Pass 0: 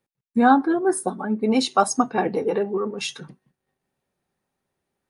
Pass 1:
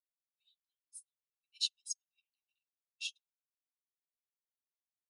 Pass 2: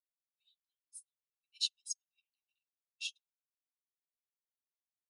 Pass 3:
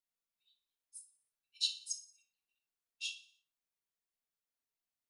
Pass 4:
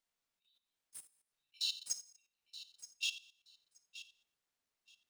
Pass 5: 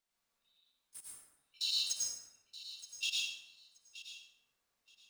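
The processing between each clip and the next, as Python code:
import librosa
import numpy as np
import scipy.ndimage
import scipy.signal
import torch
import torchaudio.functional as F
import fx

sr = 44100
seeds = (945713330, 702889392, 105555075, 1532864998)

y1 = scipy.signal.sosfilt(scipy.signal.butter(16, 2600.0, 'highpass', fs=sr, output='sos'), x)
y1 = fx.high_shelf(y1, sr, hz=7100.0, db=-9.0)
y1 = fx.upward_expand(y1, sr, threshold_db=-51.0, expansion=2.5)
y1 = y1 * librosa.db_to_amplitude(-2.5)
y2 = y1
y3 = fx.echo_feedback(y2, sr, ms=60, feedback_pct=53, wet_db=-16.5)
y3 = fx.room_shoebox(y3, sr, seeds[0], volume_m3=480.0, walls='furnished', distance_m=1.7)
y3 = y3 * librosa.db_to_amplitude(-1.5)
y4 = scipy.signal.medfilt(y3, 3)
y4 = fx.level_steps(y4, sr, step_db=14)
y4 = fx.echo_feedback(y4, sr, ms=925, feedback_pct=19, wet_db=-14.5)
y4 = y4 * librosa.db_to_amplitude(7.5)
y5 = fx.rev_plate(y4, sr, seeds[1], rt60_s=1.1, hf_ratio=0.5, predelay_ms=85, drr_db=-5.0)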